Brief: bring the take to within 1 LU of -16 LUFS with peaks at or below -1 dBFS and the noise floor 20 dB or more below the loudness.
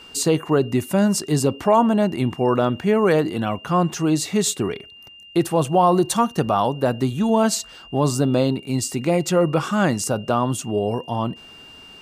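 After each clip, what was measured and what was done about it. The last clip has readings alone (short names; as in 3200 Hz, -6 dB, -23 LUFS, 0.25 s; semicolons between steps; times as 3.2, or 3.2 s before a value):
steady tone 2800 Hz; tone level -42 dBFS; loudness -20.5 LUFS; peak -6.5 dBFS; loudness target -16.0 LUFS
-> notch 2800 Hz, Q 30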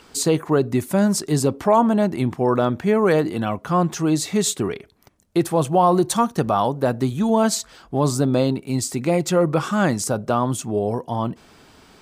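steady tone none; loudness -20.5 LUFS; peak -6.5 dBFS; loudness target -16.0 LUFS
-> gain +4.5 dB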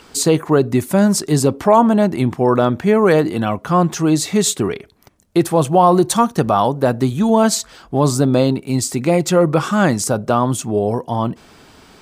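loudness -16.0 LUFS; peak -2.0 dBFS; noise floor -47 dBFS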